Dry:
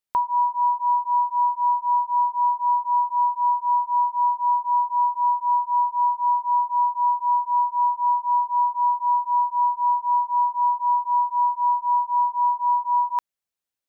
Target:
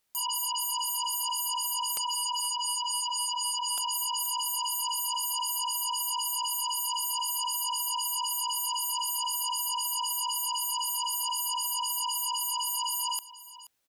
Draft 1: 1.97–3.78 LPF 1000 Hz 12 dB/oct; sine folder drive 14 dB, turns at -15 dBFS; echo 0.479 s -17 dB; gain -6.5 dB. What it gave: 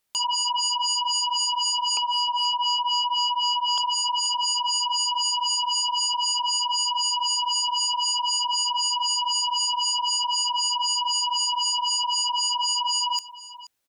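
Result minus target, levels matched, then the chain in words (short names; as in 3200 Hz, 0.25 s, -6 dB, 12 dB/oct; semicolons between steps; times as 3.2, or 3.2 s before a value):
sine folder: distortion +9 dB
1.97–3.78 LPF 1000 Hz 12 dB/oct; sine folder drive 14 dB, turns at -21.5 dBFS; echo 0.479 s -17 dB; gain -6.5 dB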